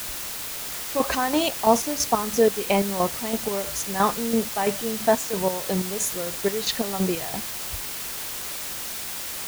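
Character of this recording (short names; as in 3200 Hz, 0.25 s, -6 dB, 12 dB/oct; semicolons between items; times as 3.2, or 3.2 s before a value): chopped level 3 Hz, depth 65%, duty 45%; a quantiser's noise floor 6-bit, dither triangular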